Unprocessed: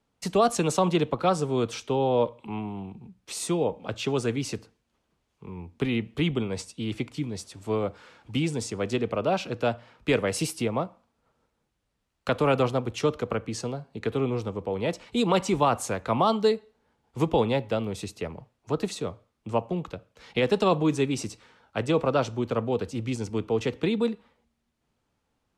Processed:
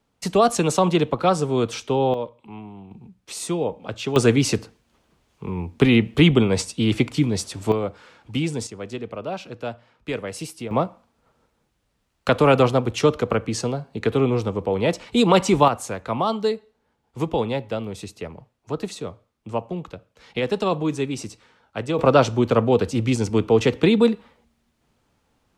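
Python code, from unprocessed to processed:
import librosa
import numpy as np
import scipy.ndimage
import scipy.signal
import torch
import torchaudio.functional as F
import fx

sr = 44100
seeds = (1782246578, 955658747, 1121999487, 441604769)

y = fx.gain(x, sr, db=fx.steps((0.0, 4.5), (2.14, -5.0), (2.91, 1.5), (4.16, 11.0), (7.72, 2.5), (8.67, -4.5), (10.71, 7.0), (15.68, 0.0), (21.99, 9.0)))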